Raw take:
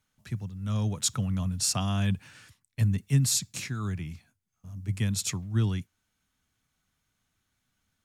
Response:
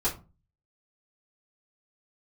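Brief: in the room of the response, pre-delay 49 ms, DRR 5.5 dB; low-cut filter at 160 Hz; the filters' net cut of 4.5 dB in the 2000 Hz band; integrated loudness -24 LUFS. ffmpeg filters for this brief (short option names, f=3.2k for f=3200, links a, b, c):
-filter_complex "[0:a]highpass=160,equalizer=f=2k:t=o:g=-6,asplit=2[a][b];[1:a]atrim=start_sample=2205,adelay=49[c];[b][c]afir=irnorm=-1:irlink=0,volume=-14dB[d];[a][d]amix=inputs=2:normalize=0,volume=7dB"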